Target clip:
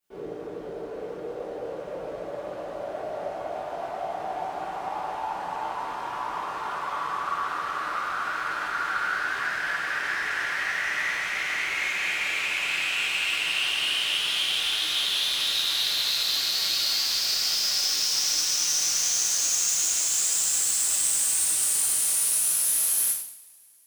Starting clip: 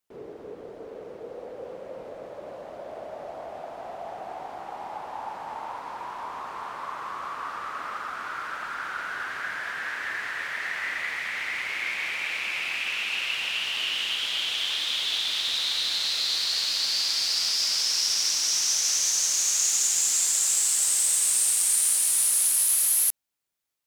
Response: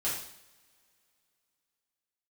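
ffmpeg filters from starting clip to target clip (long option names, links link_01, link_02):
-filter_complex "[0:a]asoftclip=type=tanh:threshold=-27.5dB[link_01];[1:a]atrim=start_sample=2205[link_02];[link_01][link_02]afir=irnorm=-1:irlink=0"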